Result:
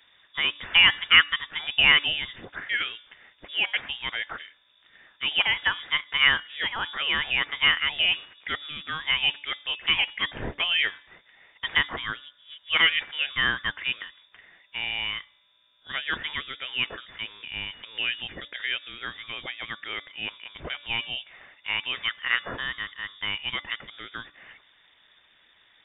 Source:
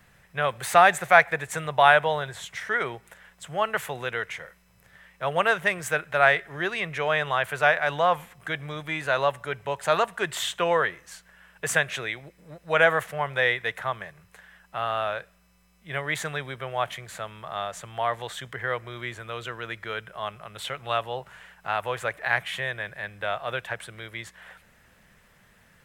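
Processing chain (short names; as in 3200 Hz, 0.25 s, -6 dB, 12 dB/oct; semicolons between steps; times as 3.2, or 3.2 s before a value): inverted band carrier 3600 Hz; de-hum 289.9 Hz, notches 18; harmonic-percussive split percussive +4 dB; gain -3.5 dB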